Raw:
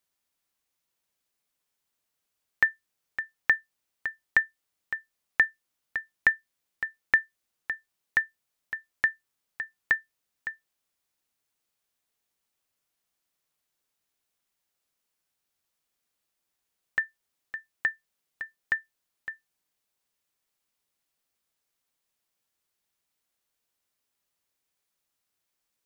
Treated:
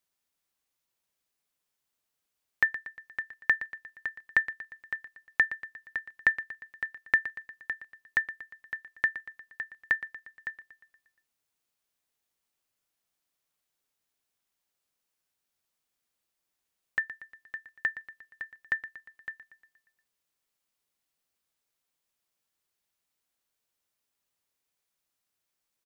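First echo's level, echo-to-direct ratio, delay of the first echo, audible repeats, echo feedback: -14.0 dB, -12.5 dB, 118 ms, 5, 55%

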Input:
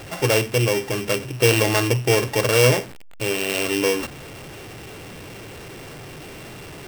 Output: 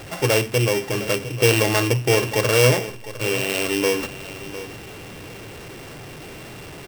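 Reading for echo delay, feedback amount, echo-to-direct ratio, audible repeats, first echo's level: 706 ms, 17%, -14.5 dB, 2, -14.5 dB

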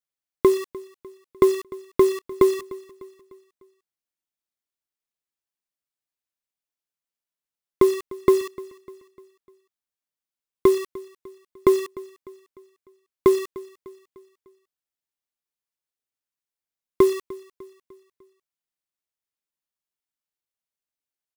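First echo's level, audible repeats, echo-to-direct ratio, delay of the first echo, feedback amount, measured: -20.0 dB, 3, -19.0 dB, 300 ms, 47%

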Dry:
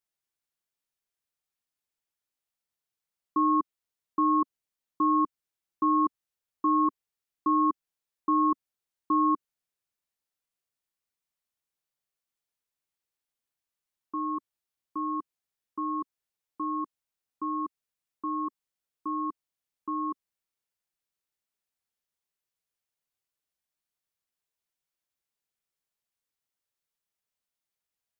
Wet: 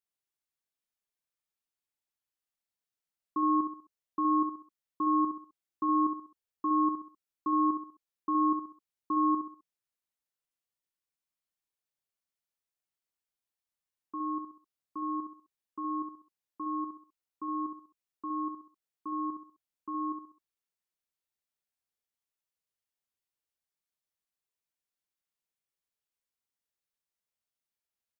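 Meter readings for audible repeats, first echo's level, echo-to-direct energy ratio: 4, -6.5 dB, -6.0 dB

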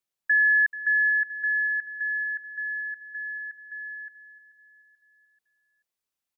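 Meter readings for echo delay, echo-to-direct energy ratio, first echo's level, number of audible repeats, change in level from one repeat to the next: 435 ms, -14.5 dB, -15.5 dB, 3, -7.0 dB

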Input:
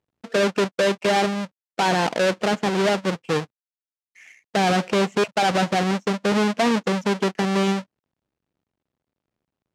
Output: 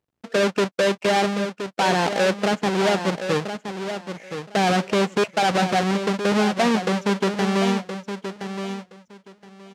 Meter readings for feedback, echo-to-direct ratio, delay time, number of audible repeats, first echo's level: 18%, -9.0 dB, 1020 ms, 2, -9.0 dB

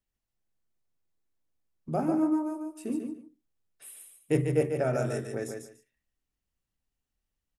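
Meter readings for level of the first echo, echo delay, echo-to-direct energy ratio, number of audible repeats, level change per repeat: -5.5 dB, 145 ms, -5.5 dB, 2, -14.0 dB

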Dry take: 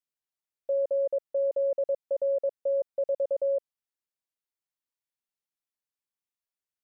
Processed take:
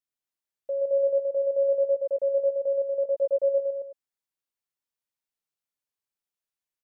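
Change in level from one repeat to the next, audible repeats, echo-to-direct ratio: no regular repeats, 3, -1.5 dB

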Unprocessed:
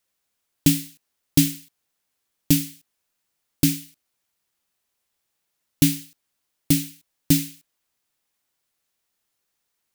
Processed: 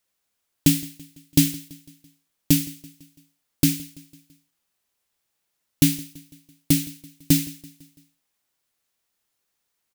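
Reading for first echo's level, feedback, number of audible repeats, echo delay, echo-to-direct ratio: -21.5 dB, 53%, 3, 167 ms, -20.0 dB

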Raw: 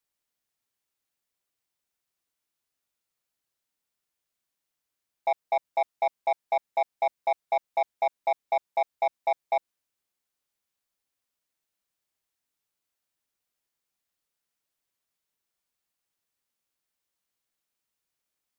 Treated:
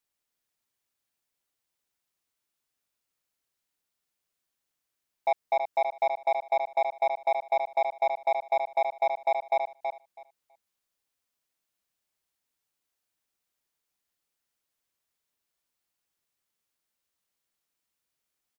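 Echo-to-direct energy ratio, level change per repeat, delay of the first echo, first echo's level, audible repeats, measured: -6.5 dB, -16.0 dB, 326 ms, -6.5 dB, 2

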